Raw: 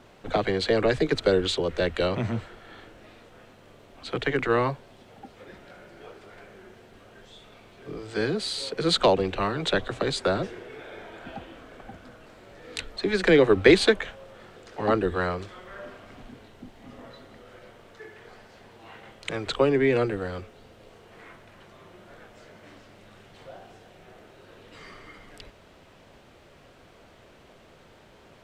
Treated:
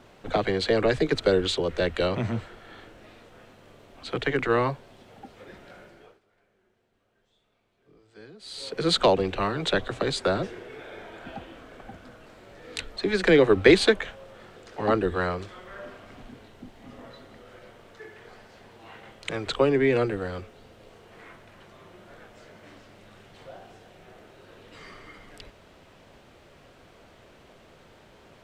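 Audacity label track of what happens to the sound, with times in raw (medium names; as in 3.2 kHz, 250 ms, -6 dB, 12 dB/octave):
5.790000	8.810000	dip -21 dB, fades 0.42 s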